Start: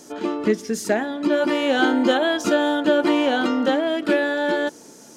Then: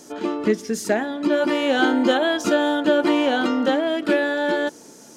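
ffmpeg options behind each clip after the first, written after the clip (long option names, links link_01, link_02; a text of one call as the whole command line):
ffmpeg -i in.wav -af anull out.wav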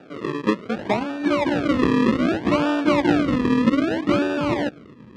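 ffmpeg -i in.wav -af "acrusher=samples=41:mix=1:aa=0.000001:lfo=1:lforange=41:lforate=0.64,highpass=180,lowpass=2900,asubboost=boost=4:cutoff=240" out.wav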